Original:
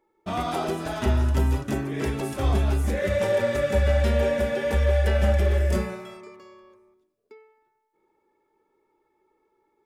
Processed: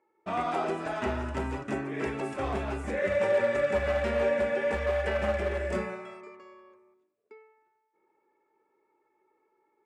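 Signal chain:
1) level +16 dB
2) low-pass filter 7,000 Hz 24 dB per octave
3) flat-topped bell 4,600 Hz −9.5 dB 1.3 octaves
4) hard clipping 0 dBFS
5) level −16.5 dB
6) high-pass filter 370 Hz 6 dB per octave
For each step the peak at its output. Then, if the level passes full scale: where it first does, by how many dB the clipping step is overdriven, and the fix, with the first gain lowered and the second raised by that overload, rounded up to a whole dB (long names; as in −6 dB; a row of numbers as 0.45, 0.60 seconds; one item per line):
+3.5, +3.5, +3.5, 0.0, −16.5, −14.5 dBFS
step 1, 3.5 dB
step 1 +12 dB, step 5 −12.5 dB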